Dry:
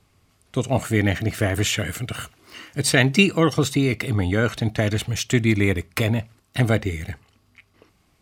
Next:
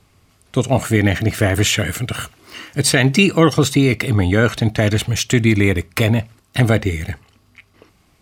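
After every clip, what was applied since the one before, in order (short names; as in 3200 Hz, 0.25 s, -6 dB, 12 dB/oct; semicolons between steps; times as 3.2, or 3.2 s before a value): maximiser +7 dB; gain -1 dB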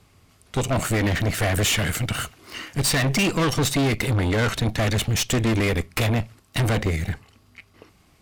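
tube stage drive 21 dB, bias 0.7; gain +3 dB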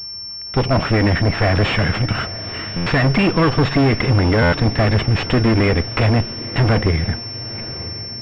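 diffused feedback echo 0.958 s, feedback 42%, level -15.5 dB; stuck buffer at 2.76/4.42, samples 512, times 8; pulse-width modulation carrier 5400 Hz; gain +6.5 dB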